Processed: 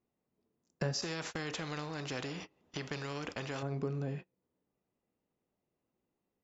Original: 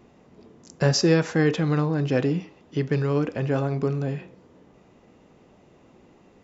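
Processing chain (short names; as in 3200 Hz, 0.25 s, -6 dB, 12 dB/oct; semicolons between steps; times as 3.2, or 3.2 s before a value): compressor 2.5:1, threshold -40 dBFS, peak gain reduction 17 dB; gate -42 dBFS, range -32 dB; 1.02–3.63 spectral compressor 2:1; gain +1 dB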